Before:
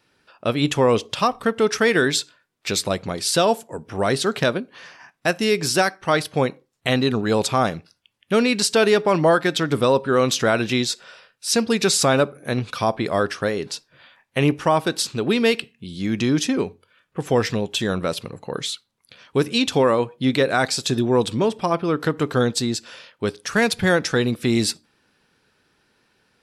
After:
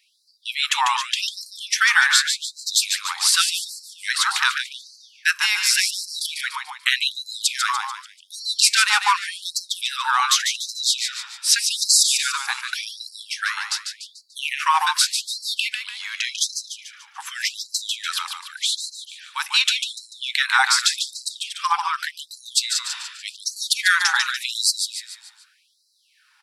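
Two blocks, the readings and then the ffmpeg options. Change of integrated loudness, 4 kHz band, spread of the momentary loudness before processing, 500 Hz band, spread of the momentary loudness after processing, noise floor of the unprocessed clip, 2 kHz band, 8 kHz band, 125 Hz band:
+0.5 dB, +6.0 dB, 11 LU, under -40 dB, 16 LU, -69 dBFS, +4.0 dB, +6.5 dB, under -40 dB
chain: -filter_complex "[0:a]asplit=6[a][b][c][d][e][f];[b]adelay=146,afreqshift=-48,volume=-6dB[g];[c]adelay=292,afreqshift=-96,volume=-12.9dB[h];[d]adelay=438,afreqshift=-144,volume=-19.9dB[i];[e]adelay=584,afreqshift=-192,volume=-26.8dB[j];[f]adelay=730,afreqshift=-240,volume=-33.7dB[k];[a][g][h][i][j][k]amix=inputs=6:normalize=0,afftfilt=real='re*gte(b*sr/1024,760*pow(4000/760,0.5+0.5*sin(2*PI*0.86*pts/sr)))':imag='im*gte(b*sr/1024,760*pow(4000/760,0.5+0.5*sin(2*PI*0.86*pts/sr)))':win_size=1024:overlap=0.75,volume=5.5dB"

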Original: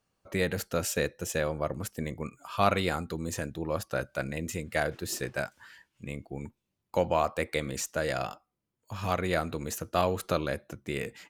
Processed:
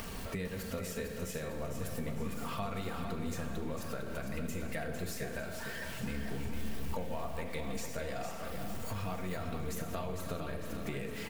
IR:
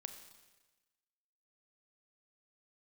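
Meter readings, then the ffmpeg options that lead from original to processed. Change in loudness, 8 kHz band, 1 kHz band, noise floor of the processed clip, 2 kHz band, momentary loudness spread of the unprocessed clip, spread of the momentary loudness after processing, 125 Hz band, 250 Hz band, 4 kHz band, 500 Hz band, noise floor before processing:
-8.0 dB, -8.0 dB, -10.0 dB, -41 dBFS, -8.5 dB, 12 LU, 2 LU, -4.0 dB, -4.0 dB, -7.5 dB, -9.5 dB, -83 dBFS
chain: -filter_complex "[0:a]aeval=exprs='val(0)+0.5*0.0133*sgn(val(0))':c=same,bandreject=f=54.52:t=h:w=4,bandreject=f=109.04:t=h:w=4,bandreject=f=163.56:t=h:w=4,bandreject=f=218.08:t=h:w=4,bandreject=f=272.6:t=h:w=4,bandreject=f=327.12:t=h:w=4,bandreject=f=381.64:t=h:w=4,bandreject=f=436.16:t=h:w=4,bandreject=f=490.68:t=h:w=4,bandreject=f=545.2:t=h:w=4,bandreject=f=599.72:t=h:w=4,bandreject=f=654.24:t=h:w=4,bandreject=f=708.76:t=h:w=4,bandreject=f=763.28:t=h:w=4,bandreject=f=817.8:t=h:w=4,bandreject=f=872.32:t=h:w=4,bandreject=f=926.84:t=h:w=4,bandreject=f=981.36:t=h:w=4,bandreject=f=1.03588k:t=h:w=4,bandreject=f=1.0904k:t=h:w=4,bandreject=f=1.14492k:t=h:w=4,bandreject=f=1.19944k:t=h:w=4,bandreject=f=1.25396k:t=h:w=4,bandreject=f=1.30848k:t=h:w=4,bandreject=f=1.363k:t=h:w=4,bandreject=f=1.41752k:t=h:w=4,bandreject=f=1.47204k:t=h:w=4,bandreject=f=1.52656k:t=h:w=4,bandreject=f=1.58108k:t=h:w=4[a];[1:a]atrim=start_sample=2205[b];[a][b]afir=irnorm=-1:irlink=0,flanger=delay=3.3:depth=8.8:regen=-50:speed=1.3:shape=sinusoidal,acompressor=threshold=-47dB:ratio=6,lowshelf=f=140:g=10,aecho=1:1:4.4:0.37,acompressor=mode=upward:threshold=-50dB:ratio=2.5,equalizer=f=6.5k:w=1.2:g=-4,aecho=1:1:453|906|1359|1812|2265:0.447|0.201|0.0905|0.0407|0.0183,volume=7.5dB"

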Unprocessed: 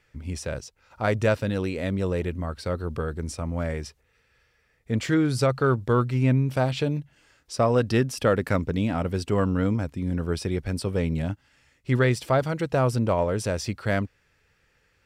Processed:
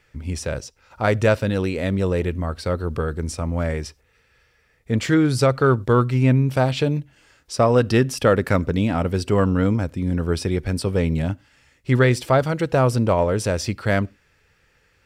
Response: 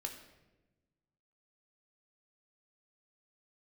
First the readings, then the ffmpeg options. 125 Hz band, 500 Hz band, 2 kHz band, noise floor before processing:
+4.5 dB, +5.0 dB, +4.5 dB, -67 dBFS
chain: -filter_complex "[0:a]asplit=2[a][b];[1:a]atrim=start_sample=2205,afade=t=out:st=0.16:d=0.01,atrim=end_sample=7497[c];[b][c]afir=irnorm=-1:irlink=0,volume=-16.5dB[d];[a][d]amix=inputs=2:normalize=0,volume=4dB"

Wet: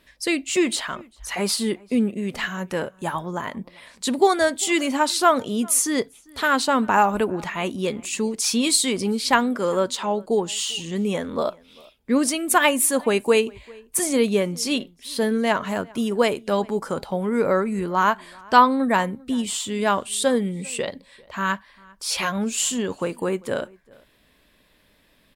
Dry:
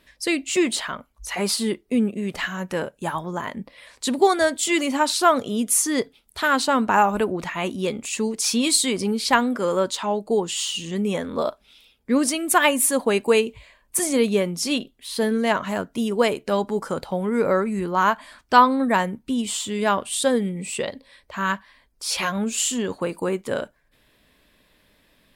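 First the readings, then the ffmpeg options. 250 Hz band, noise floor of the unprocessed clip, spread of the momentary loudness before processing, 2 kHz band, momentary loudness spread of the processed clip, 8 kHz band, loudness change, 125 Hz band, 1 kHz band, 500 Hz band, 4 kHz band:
0.0 dB, -62 dBFS, 10 LU, 0.0 dB, 10 LU, 0.0 dB, 0.0 dB, 0.0 dB, 0.0 dB, 0.0 dB, 0.0 dB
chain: -filter_complex "[0:a]asplit=2[a][b];[b]adelay=396.5,volume=-25dB,highshelf=f=4k:g=-8.92[c];[a][c]amix=inputs=2:normalize=0"

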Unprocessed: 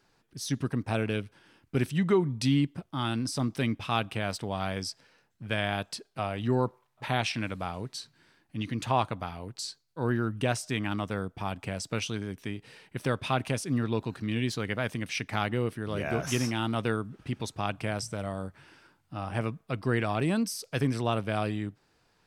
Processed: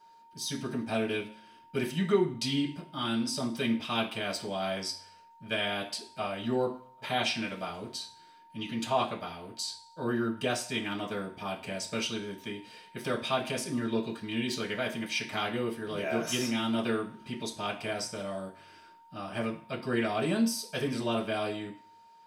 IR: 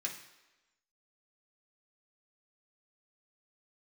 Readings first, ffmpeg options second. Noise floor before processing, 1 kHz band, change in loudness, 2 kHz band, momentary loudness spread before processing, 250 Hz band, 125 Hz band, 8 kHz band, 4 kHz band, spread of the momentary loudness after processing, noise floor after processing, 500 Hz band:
-70 dBFS, -2.0 dB, -1.5 dB, -0.5 dB, 10 LU, -1.5 dB, -9.0 dB, +0.5 dB, +2.5 dB, 10 LU, -57 dBFS, 0.0 dB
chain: -filter_complex "[0:a]aeval=exprs='val(0)+0.00158*sin(2*PI*920*n/s)':c=same,bandreject=f=72.3:t=h:w=4,bandreject=f=144.6:t=h:w=4,bandreject=f=216.9:t=h:w=4[a];[1:a]atrim=start_sample=2205,asetrate=83790,aresample=44100[b];[a][b]afir=irnorm=-1:irlink=0,volume=6dB"

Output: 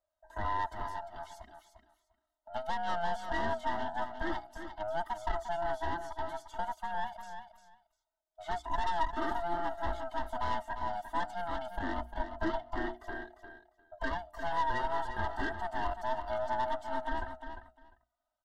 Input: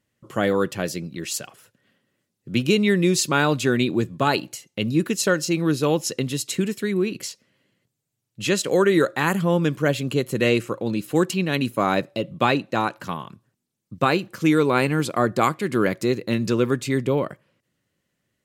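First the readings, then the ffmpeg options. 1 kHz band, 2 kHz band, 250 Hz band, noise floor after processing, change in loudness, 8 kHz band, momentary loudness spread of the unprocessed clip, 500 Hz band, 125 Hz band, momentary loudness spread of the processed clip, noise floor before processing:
-5.5 dB, -13.0 dB, -22.0 dB, under -85 dBFS, -14.0 dB, under -25 dB, 10 LU, -16.0 dB, -22.0 dB, 13 LU, -79 dBFS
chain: -filter_complex "[0:a]afftfilt=real='real(if(lt(b,1008),b+24*(1-2*mod(floor(b/24),2)),b),0)':imag='imag(if(lt(b,1008),b+24*(1-2*mod(floor(b/24),2)),b),0)':win_size=2048:overlap=0.75,highshelf=f=3.4k:g=-9.5,bandreject=f=60:t=h:w=6,bandreject=f=120:t=h:w=6,bandreject=f=180:t=h:w=6,bandreject=f=240:t=h:w=6,bandreject=f=300:t=h:w=6,bandreject=f=360:t=h:w=6,acrossover=split=2500[a][b];[b]acompressor=threshold=-46dB:ratio=4:attack=1:release=60[c];[a][c]amix=inputs=2:normalize=0,aecho=1:1:3.2:0.91,aeval=exprs='(tanh(7.08*val(0)+0.65)-tanh(0.65))/7.08':c=same,flanger=delay=1.7:depth=2.6:regen=43:speed=0.14:shape=triangular,asuperstop=centerf=2400:order=4:qfactor=2.9,asplit=2[d][e];[e]aecho=0:1:350|700:0.355|0.0568[f];[d][f]amix=inputs=2:normalize=0,volume=-7dB"

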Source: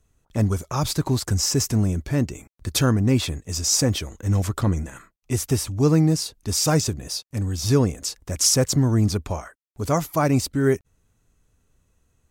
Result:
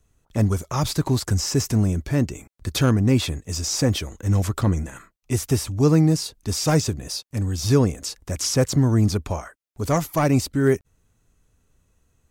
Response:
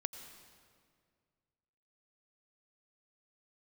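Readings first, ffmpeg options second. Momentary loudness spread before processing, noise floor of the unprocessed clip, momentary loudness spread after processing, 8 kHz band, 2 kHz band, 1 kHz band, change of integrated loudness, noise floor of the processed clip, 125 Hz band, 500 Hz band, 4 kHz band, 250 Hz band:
10 LU, -69 dBFS, 10 LU, -4.0 dB, +0.5 dB, 0.0 dB, 0.0 dB, -68 dBFS, +1.0 dB, +1.0 dB, -2.0 dB, +1.0 dB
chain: -filter_complex "[0:a]acrossover=split=4200[a][b];[b]acompressor=threshold=-27dB:ratio=4:attack=1:release=60[c];[a][c]amix=inputs=2:normalize=0,acrossover=split=730|2500[d][e][f];[e]aeval=exprs='clip(val(0),-1,0.0447)':c=same[g];[d][g][f]amix=inputs=3:normalize=0,volume=1dB"

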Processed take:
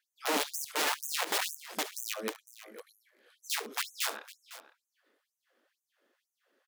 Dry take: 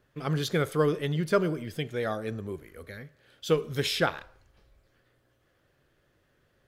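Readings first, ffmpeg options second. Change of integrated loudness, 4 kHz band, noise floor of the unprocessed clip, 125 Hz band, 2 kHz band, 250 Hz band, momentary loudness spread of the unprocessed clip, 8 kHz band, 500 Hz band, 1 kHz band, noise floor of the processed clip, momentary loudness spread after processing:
-4.0 dB, +0.5 dB, -70 dBFS, under -30 dB, -1.0 dB, -13.5 dB, 17 LU, +8.5 dB, -12.5 dB, -1.5 dB, under -85 dBFS, 20 LU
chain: -af "deesser=0.95,lowshelf=f=140:g=11,aeval=exprs='0.335*(cos(1*acos(clip(val(0)/0.335,-1,1)))-cos(1*PI/2))+0.0119*(cos(5*acos(clip(val(0)/0.335,-1,1)))-cos(5*PI/2))+0.0237*(cos(7*acos(clip(val(0)/0.335,-1,1)))-cos(7*PI/2))':c=same,aeval=exprs='(mod(15*val(0)+1,2)-1)/15':c=same,aecho=1:1:69|505:0.158|0.15,afftfilt=real='re*gte(b*sr/1024,200*pow(6100/200,0.5+0.5*sin(2*PI*2.1*pts/sr)))':imag='im*gte(b*sr/1024,200*pow(6100/200,0.5+0.5*sin(2*PI*2.1*pts/sr)))':win_size=1024:overlap=0.75"

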